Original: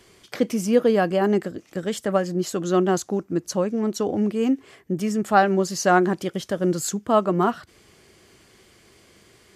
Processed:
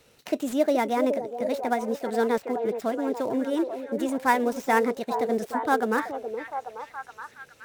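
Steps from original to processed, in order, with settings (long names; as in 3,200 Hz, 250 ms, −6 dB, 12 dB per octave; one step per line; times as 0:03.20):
gap after every zero crossing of 0.078 ms
speed change +25%
echo through a band-pass that steps 421 ms, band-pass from 460 Hz, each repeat 0.7 octaves, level −4 dB
level −4.5 dB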